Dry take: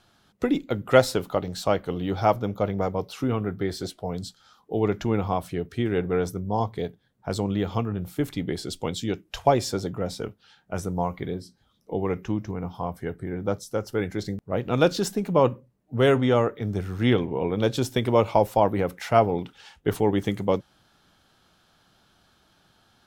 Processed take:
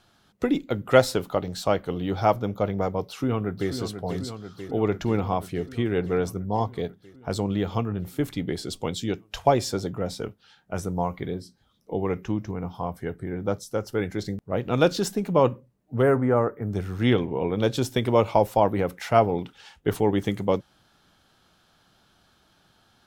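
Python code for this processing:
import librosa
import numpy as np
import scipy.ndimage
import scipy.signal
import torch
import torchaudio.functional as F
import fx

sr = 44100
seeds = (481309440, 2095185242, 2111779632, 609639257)

y = fx.echo_throw(x, sr, start_s=3.07, length_s=0.65, ms=490, feedback_pct=75, wet_db=-8.5)
y = fx.cheby1_bandstop(y, sr, low_hz=1500.0, high_hz=10000.0, order=2, at=(16.01, 16.71), fade=0.02)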